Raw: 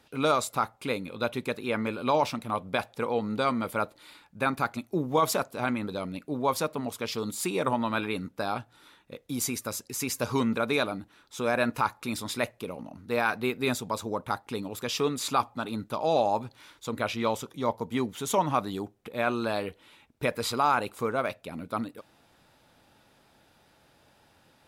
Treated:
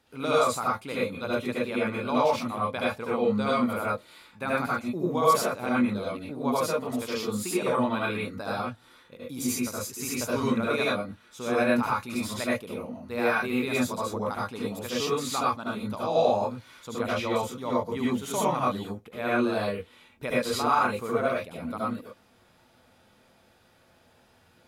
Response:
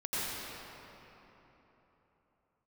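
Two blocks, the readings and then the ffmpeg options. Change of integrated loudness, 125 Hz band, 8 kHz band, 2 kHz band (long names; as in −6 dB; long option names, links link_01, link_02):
+1.5 dB, +0.5 dB, 0.0 dB, +1.5 dB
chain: -filter_complex "[1:a]atrim=start_sample=2205,afade=type=out:start_time=0.2:duration=0.01,atrim=end_sample=9261,asetrate=52920,aresample=44100[link_01];[0:a][link_01]afir=irnorm=-1:irlink=0"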